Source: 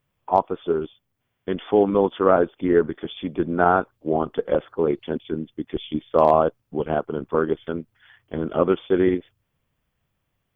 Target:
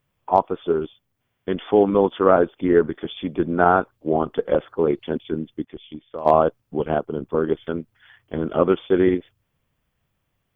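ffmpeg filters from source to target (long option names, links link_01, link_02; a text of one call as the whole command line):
ffmpeg -i in.wav -filter_complex "[0:a]asplit=3[link_01][link_02][link_03];[link_01]afade=type=out:start_time=5.64:duration=0.02[link_04];[link_02]acompressor=threshold=-44dB:ratio=2,afade=type=in:start_time=5.64:duration=0.02,afade=type=out:start_time=6.25:duration=0.02[link_05];[link_03]afade=type=in:start_time=6.25:duration=0.02[link_06];[link_04][link_05][link_06]amix=inputs=3:normalize=0,asettb=1/sr,asplit=3[link_07][link_08][link_09];[link_07]atrim=end=6.984[link_10];[link_08]atrim=start=6.98:end=7.44,asetpts=PTS-STARTPTS,afade=type=in:duration=0.004:curve=qsin,afade=type=out:start_time=0.456:duration=0.004:curve=qsin,equalizer=frequency=1500:width=0.63:gain=-7[link_11];[link_09]atrim=start=7.436[link_12];[link_10][link_11]acrossfade=duration=0.004:curve1=hsin:curve2=qsin[link_13];[link_13][link_12]acrossfade=duration=0.004:curve1=qsin:curve2=hsin,volume=1.5dB" out.wav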